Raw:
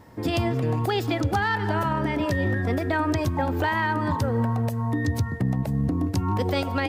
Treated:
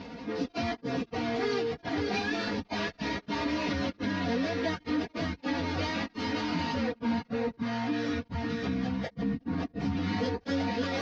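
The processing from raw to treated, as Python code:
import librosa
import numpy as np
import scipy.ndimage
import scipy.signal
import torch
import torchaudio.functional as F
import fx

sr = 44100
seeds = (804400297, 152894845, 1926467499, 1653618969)

y = scipy.signal.medfilt(x, 41)
y = fx.low_shelf(y, sr, hz=320.0, db=10.0)
y = y + 10.0 ** (-5.5 / 20.0) * np.pad(y, (int(347 * sr / 1000.0), 0))[:len(y)]
y = fx.step_gate(y, sr, bpm=167, pattern='xxx.x.x.xxxx.xx', floor_db=-60.0, edge_ms=4.5)
y = scipy.signal.sosfilt(scipy.signal.butter(8, 5500.0, 'lowpass', fs=sr, output='sos'), y)
y = fx.tilt_eq(y, sr, slope=4.5)
y = fx.stretch_vocoder_free(y, sr, factor=1.6)
y = scipy.signal.sosfilt(scipy.signal.butter(2, 44.0, 'highpass', fs=sr, output='sos'), y)
y = y + 0.85 * np.pad(y, (int(4.2 * sr / 1000.0), 0))[:len(y)]
y = fx.env_flatten(y, sr, amount_pct=50)
y = y * 10.0 ** (-4.0 / 20.0)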